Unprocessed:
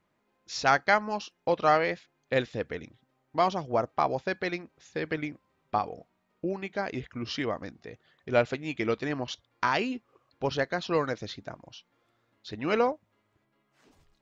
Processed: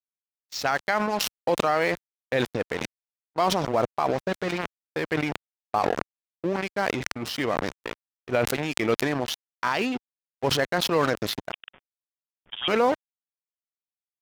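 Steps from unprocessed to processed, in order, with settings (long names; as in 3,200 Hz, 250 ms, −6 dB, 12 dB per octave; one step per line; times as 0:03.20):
0:04.13–0:04.58: linear delta modulator 32 kbit/s, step −43.5 dBFS
dead-zone distortion −40 dBFS
noise gate −51 dBFS, range −24 dB
high-pass filter 82 Hz 6 dB per octave
0:11.52–0:12.68: voice inversion scrambler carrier 3,500 Hz
boost into a limiter +17 dB
level that may fall only so fast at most 26 dB per second
level −11.5 dB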